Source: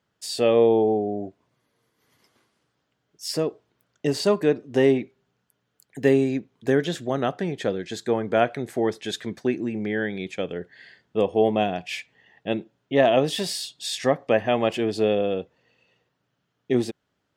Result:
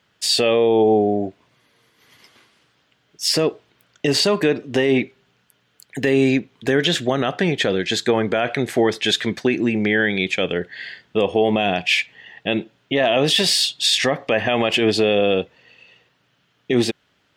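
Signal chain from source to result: peaking EQ 2.8 kHz +9 dB 1.9 oct; peak limiter -15.5 dBFS, peak gain reduction 13 dB; trim +8 dB

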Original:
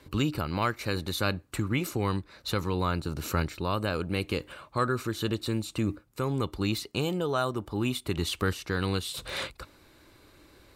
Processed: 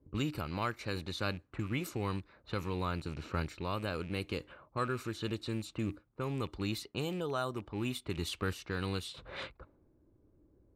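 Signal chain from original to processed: rattle on loud lows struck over -32 dBFS, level -35 dBFS; level-controlled noise filter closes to 320 Hz, open at -26 dBFS; trim -7 dB

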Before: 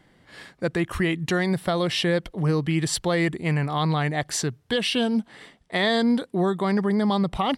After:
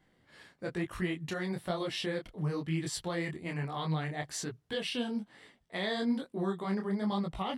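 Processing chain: detune thickener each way 38 cents; trim -7.5 dB

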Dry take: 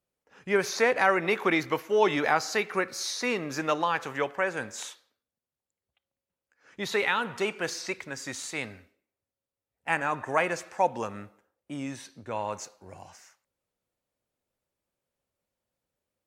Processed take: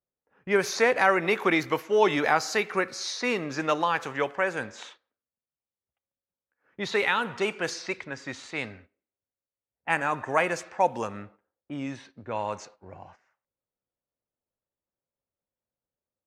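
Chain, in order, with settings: level-controlled noise filter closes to 1.6 kHz, open at -24.5 dBFS; gate -53 dBFS, range -9 dB; trim +1.5 dB

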